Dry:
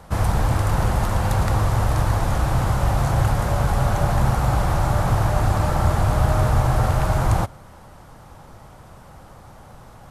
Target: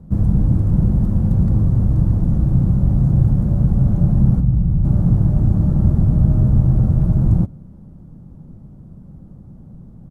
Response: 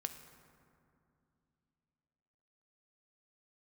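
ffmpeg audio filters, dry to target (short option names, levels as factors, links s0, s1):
-filter_complex "[0:a]firequalizer=gain_entry='entry(110,0);entry(170,9);entry(450,-10);entry(810,-22);entry(2000,-29);entry(13000,-25)':delay=0.05:min_phase=1,asettb=1/sr,asplit=3[s0][s1][s2];[s0]atrim=end=4.404[s3];[s1]atrim=start=4.4:end=4.85,asetpts=PTS-STARTPTS,afade=t=in:d=0.004:c=qsin,afade=t=out:st=0.446:d=0.004:c=qsin,acrossover=split=200[s4][s5];[s5]acompressor=threshold=0.00501:ratio=2[s6];[s4][s6]amix=inputs=2:normalize=0[s7];[s2]atrim=start=4.846[s8];[s3][s7]acrossfade=d=0.004:c1=hsin:c2=qsin[s9];[s9][s8]acrossfade=d=0.004:c1=qsin:c2=hsin,volume=1.58"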